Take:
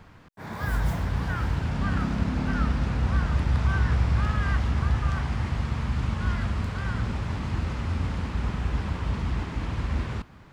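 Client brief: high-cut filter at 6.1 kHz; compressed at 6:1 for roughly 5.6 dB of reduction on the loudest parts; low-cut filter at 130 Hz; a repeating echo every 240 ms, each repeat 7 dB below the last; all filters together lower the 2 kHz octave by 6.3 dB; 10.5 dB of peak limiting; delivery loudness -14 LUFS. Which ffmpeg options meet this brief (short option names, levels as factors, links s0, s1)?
-af "highpass=130,lowpass=6100,equalizer=f=2000:t=o:g=-9,acompressor=threshold=0.0282:ratio=6,alimiter=level_in=3.16:limit=0.0631:level=0:latency=1,volume=0.316,aecho=1:1:240|480|720|960|1200:0.447|0.201|0.0905|0.0407|0.0183,volume=23.7"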